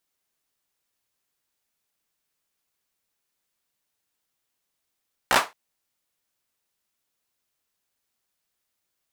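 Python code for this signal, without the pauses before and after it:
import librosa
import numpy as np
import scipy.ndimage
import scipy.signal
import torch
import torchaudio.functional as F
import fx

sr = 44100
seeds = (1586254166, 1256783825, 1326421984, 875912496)

y = fx.drum_clap(sr, seeds[0], length_s=0.22, bursts=4, spacing_ms=16, hz=980.0, decay_s=0.22)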